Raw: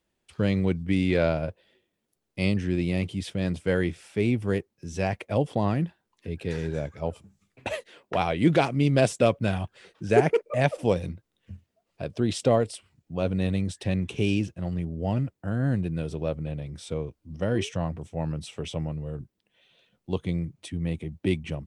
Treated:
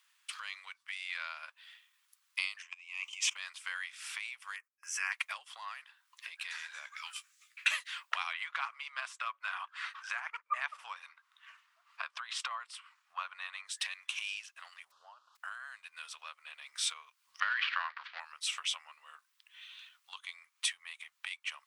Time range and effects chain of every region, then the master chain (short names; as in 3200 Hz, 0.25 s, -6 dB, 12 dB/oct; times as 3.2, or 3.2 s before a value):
2.62–3.36 ripple EQ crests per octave 0.74, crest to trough 16 dB + level quantiser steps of 20 dB
4.56–5.12 gate -54 dBFS, range -20 dB + resonant high-pass 430 Hz, resonance Q 2.5 + fixed phaser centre 1600 Hz, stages 4
6.96–7.71 HPF 1400 Hz 24 dB/oct + doubler 17 ms -10.5 dB
8.33–13.67 LPF 3600 Hz 6 dB/oct + bell 1100 Hz +10.5 dB 1.6 oct
14.9–15.35 added noise pink -53 dBFS + Butterworth band-stop 2100 Hz, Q 0.86 + tape spacing loss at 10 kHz 31 dB
17.4–18.2 switching dead time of 0.085 ms + Chebyshev band-pass 490–4500 Hz, order 4 + bell 1600 Hz +11 dB 0.84 oct
whole clip: compressor 12:1, threshold -36 dBFS; elliptic high-pass 1100 Hz, stop band 70 dB; gain +12 dB